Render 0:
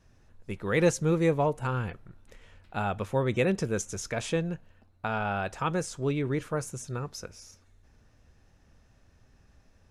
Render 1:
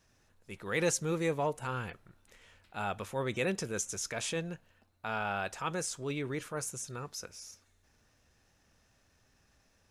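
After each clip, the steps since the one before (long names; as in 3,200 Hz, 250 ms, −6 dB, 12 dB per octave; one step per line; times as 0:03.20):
spectral tilt +2 dB per octave
transient designer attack −5 dB, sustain 0 dB
level −3 dB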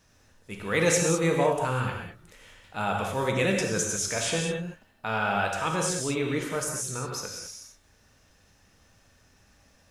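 reverb whose tail is shaped and stops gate 230 ms flat, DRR 0.5 dB
level +5.5 dB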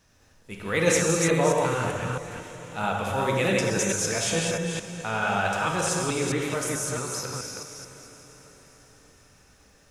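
delay that plays each chunk backwards 218 ms, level −2.5 dB
feedback delay with all-pass diffusion 594 ms, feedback 49%, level −15.5 dB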